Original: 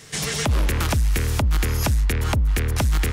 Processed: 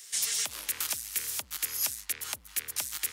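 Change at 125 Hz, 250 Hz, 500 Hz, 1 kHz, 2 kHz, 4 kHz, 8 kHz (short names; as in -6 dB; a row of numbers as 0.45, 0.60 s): -38.0, -29.0, -22.5, -17.0, -11.0, -5.0, +0.5 dB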